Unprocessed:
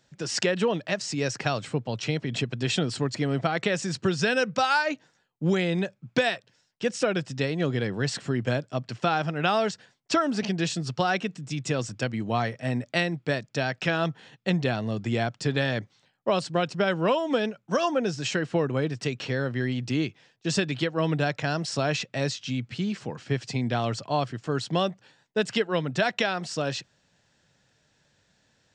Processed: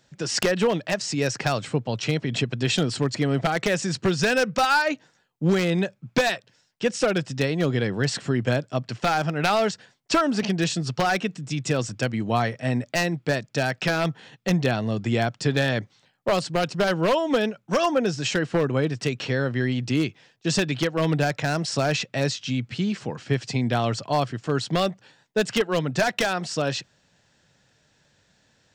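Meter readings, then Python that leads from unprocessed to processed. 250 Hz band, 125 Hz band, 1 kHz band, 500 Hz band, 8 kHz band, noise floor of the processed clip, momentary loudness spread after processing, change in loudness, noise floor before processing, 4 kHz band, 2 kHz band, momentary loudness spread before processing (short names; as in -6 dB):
+3.0 dB, +3.5 dB, +3.0 dB, +3.0 dB, +4.5 dB, -65 dBFS, 6 LU, +3.0 dB, -69 dBFS, +3.0 dB, +2.5 dB, 6 LU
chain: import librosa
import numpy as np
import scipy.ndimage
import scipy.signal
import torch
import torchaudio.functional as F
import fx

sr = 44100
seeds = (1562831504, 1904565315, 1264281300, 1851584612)

y = np.minimum(x, 2.0 * 10.0 ** (-17.0 / 20.0) - x)
y = F.gain(torch.from_numpy(y), 3.5).numpy()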